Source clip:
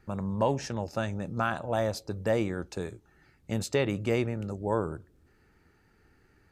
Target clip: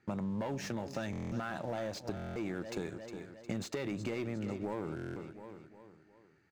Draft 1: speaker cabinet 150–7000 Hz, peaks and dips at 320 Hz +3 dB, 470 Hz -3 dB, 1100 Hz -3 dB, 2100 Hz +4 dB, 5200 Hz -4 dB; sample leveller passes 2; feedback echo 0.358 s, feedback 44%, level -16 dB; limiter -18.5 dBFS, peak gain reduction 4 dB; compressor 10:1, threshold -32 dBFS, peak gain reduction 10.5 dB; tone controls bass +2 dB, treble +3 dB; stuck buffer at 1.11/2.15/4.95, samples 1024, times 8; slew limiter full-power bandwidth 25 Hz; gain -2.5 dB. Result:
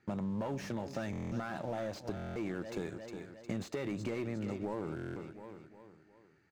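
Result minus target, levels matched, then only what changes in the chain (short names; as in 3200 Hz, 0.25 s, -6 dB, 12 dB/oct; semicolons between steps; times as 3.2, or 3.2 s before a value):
slew limiter: distortion +5 dB
change: slew limiter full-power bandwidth 53.5 Hz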